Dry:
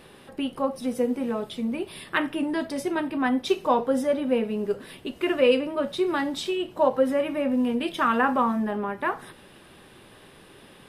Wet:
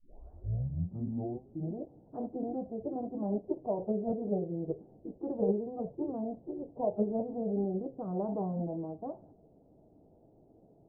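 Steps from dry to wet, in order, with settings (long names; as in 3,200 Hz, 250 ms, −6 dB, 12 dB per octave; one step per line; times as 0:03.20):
turntable start at the beginning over 1.87 s
phase-vocoder pitch shift with formants kept −4 semitones
elliptic low-pass filter 710 Hz, stop band 70 dB
level −7.5 dB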